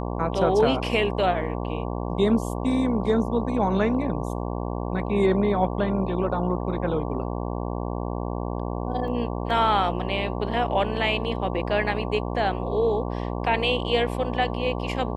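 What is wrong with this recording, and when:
buzz 60 Hz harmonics 19 -29 dBFS
9.08 s: dropout 2.1 ms

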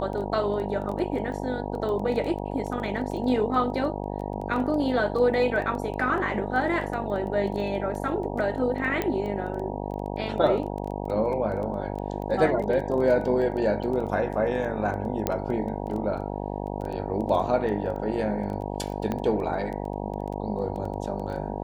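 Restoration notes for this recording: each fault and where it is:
buzz 50 Hz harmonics 19 -32 dBFS
crackle 10 per s -32 dBFS
9.02 s: pop -13 dBFS
15.27 s: pop -10 dBFS
19.12 s: pop -16 dBFS

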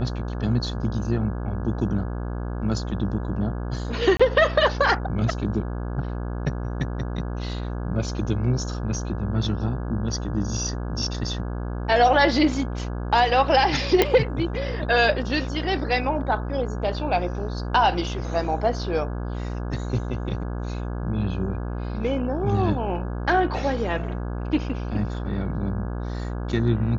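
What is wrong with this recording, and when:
buzz 60 Hz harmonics 28 -29 dBFS
4.17–4.20 s: dropout 25 ms
14.02 s: pop -4 dBFS

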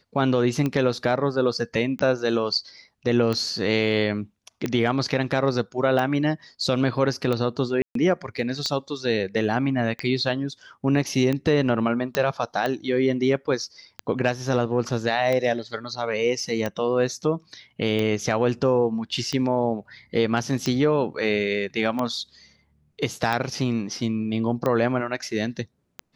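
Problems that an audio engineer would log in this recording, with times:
tick 45 rpm -13 dBFS
7.82–7.95 s: dropout 133 ms
12.15 s: pop -8 dBFS

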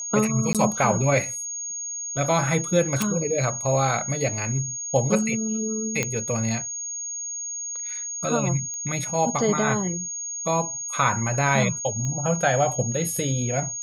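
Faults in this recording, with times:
whine 6.6 kHz -29 dBFS
0.53–0.55 s: dropout 17 ms
3.02 s: pop
6.03 s: pop -9 dBFS
8.74 s: pop -22 dBFS
12.05 s: pop -19 dBFS

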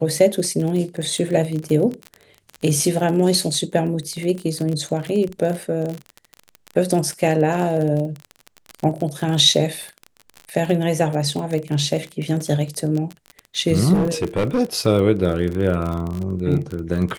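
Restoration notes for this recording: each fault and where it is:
crackle 35 per s -24 dBFS
13.93–14.60 s: clipped -14.5 dBFS

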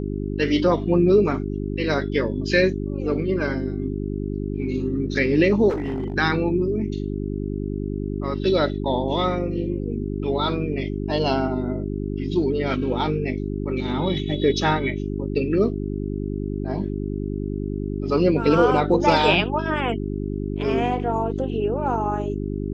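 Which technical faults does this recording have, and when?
hum 50 Hz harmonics 8 -27 dBFS
5.69–6.14 s: clipped -22 dBFS

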